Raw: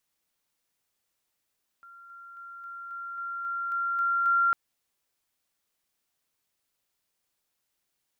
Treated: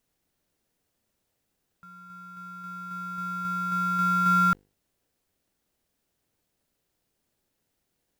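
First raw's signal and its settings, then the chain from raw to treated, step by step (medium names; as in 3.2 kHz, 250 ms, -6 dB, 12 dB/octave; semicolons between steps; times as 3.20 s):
level ladder 1.38 kHz -47 dBFS, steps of 3 dB, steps 10, 0.27 s 0.00 s
bass shelf 490 Hz +7.5 dB; hum notches 50/100/150/200/250/300/350/400/450/500 Hz; in parallel at -5 dB: sample-rate reducer 1.2 kHz, jitter 0%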